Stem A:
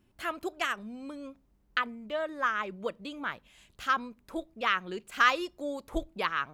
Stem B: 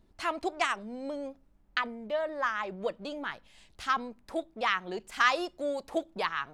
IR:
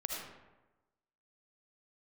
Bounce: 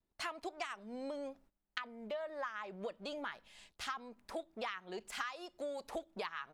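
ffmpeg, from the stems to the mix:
-filter_complex "[0:a]volume=-14dB[link_01];[1:a]adelay=5.1,volume=0dB[link_02];[link_01][link_02]amix=inputs=2:normalize=0,agate=range=-17dB:threshold=-58dB:ratio=16:detection=peak,lowshelf=frequency=320:gain=-7.5,acompressor=threshold=-38dB:ratio=12"

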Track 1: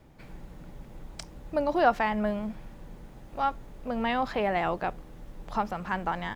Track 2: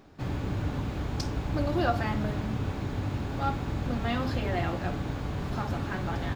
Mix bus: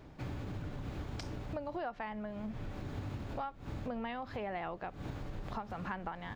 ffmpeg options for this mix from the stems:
ffmpeg -i stem1.wav -i stem2.wav -filter_complex "[0:a]lowpass=4300,tremolo=f=1.5:d=0.61,volume=1.5dB,asplit=2[link_01][link_02];[1:a]volume=-1,volume=-5.5dB[link_03];[link_02]apad=whole_len=280141[link_04];[link_03][link_04]sidechaincompress=threshold=-46dB:ratio=4:attack=16:release=138[link_05];[link_01][link_05]amix=inputs=2:normalize=0,acompressor=threshold=-36dB:ratio=16" out.wav

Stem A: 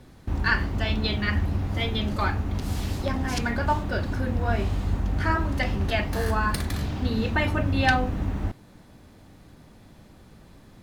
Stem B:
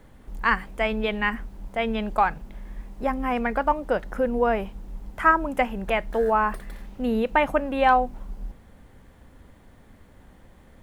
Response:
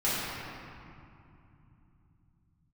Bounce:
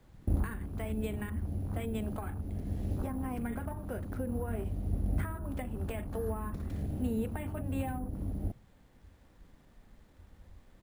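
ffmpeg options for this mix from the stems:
-filter_complex "[0:a]highshelf=frequency=4300:gain=-10.5,bandreject=frequency=60:width_type=h:width=6,bandreject=frequency=120:width_type=h:width=6,afwtdn=0.0224,volume=1dB[link_01];[1:a]acompressor=threshold=-22dB:ratio=6,adelay=0.4,volume=-12dB,asplit=2[link_02][link_03];[link_03]apad=whole_len=477453[link_04];[link_01][link_04]sidechaincompress=threshold=-44dB:ratio=10:attack=9.9:release=1310[link_05];[link_05][link_02]amix=inputs=2:normalize=0,highshelf=frequency=6800:gain=8.5,acrossover=split=480[link_06][link_07];[link_07]acompressor=threshold=-43dB:ratio=10[link_08];[link_06][link_08]amix=inputs=2:normalize=0,acrusher=samples=4:mix=1:aa=0.000001"

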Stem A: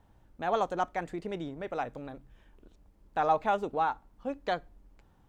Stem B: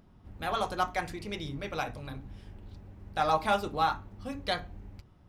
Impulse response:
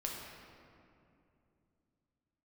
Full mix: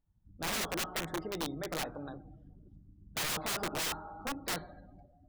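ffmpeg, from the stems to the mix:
-filter_complex "[0:a]lowshelf=frequency=390:gain=-9.5,volume=-1dB,asplit=2[link_01][link_02];[link_02]volume=-21.5dB[link_03];[1:a]equalizer=frequency=5100:width_type=o:width=0.33:gain=3.5,volume=-14dB,asplit=2[link_04][link_05];[link_05]volume=-4dB[link_06];[2:a]atrim=start_sample=2205[link_07];[link_03][link_06]amix=inputs=2:normalize=0[link_08];[link_08][link_07]afir=irnorm=-1:irlink=0[link_09];[link_01][link_04][link_09]amix=inputs=3:normalize=0,afftdn=noise_reduction=25:noise_floor=-51,equalizer=frequency=160:width_type=o:width=0.33:gain=7,equalizer=frequency=315:width_type=o:width=0.33:gain=8,equalizer=frequency=2500:width_type=o:width=0.33:gain=-6,equalizer=frequency=5000:width_type=o:width=0.33:gain=-3,aeval=exprs='(mod(28.2*val(0)+1,2)-1)/28.2':channel_layout=same"

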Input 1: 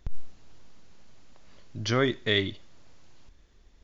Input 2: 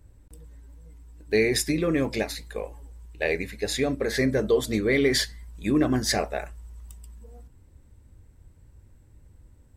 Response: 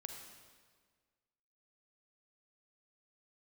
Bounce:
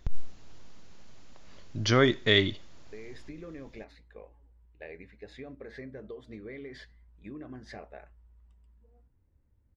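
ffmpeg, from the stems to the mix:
-filter_complex "[0:a]volume=2.5dB,asplit=2[link_01][link_02];[1:a]lowpass=2500,acompressor=threshold=-24dB:ratio=6,adelay=1600,volume=-15.5dB[link_03];[link_02]apad=whole_len=501031[link_04];[link_03][link_04]sidechaincompress=threshold=-24dB:ratio=8:attack=16:release=1400[link_05];[link_01][link_05]amix=inputs=2:normalize=0"

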